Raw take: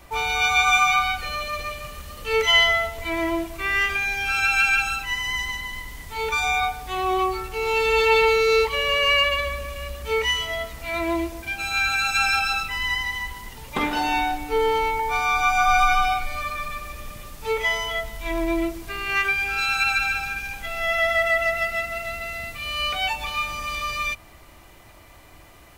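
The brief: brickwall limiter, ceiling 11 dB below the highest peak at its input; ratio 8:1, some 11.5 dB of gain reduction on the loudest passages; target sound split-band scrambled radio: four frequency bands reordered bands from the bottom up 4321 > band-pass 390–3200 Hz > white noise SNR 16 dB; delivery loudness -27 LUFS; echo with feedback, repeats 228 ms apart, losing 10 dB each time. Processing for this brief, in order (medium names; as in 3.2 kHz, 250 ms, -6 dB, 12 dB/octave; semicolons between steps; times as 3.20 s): compression 8:1, threshold -26 dBFS; peak limiter -25 dBFS; feedback delay 228 ms, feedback 32%, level -10 dB; four frequency bands reordered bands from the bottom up 4321; band-pass 390–3200 Hz; white noise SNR 16 dB; trim +8.5 dB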